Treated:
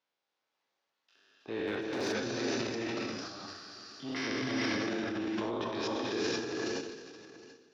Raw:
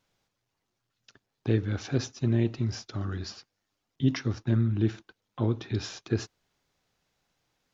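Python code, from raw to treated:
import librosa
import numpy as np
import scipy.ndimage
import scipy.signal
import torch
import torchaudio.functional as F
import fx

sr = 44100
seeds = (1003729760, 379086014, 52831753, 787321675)

p1 = fx.spec_trails(x, sr, decay_s=1.54)
p2 = fx.rider(p1, sr, range_db=4, speed_s=2.0)
p3 = p1 + F.gain(torch.from_numpy(p2), -2.0).numpy()
p4 = fx.leveller(p3, sr, passes=1)
p5 = p4 + 10.0 ** (-18.0 / 20.0) * np.pad(p4, (int(724 * sr / 1000.0), 0))[:len(p4)]
p6 = fx.level_steps(p5, sr, step_db=19)
p7 = scipy.signal.sosfilt(scipy.signal.butter(2, 4700.0, 'lowpass', fs=sr, output='sos'), p6)
p8 = fx.rev_gated(p7, sr, seeds[0], gate_ms=500, shape='rising', drr_db=-2.0)
p9 = fx.clip_hard(p8, sr, threshold_db=-13.5, at=(1.66, 2.2))
p10 = scipy.signal.sosfilt(scipy.signal.butter(2, 420.0, 'highpass', fs=sr, output='sos'), p9)
p11 = fx.transient(p10, sr, attack_db=-3, sustain_db=9)
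y = F.gain(torch.from_numpy(p11), -8.5).numpy()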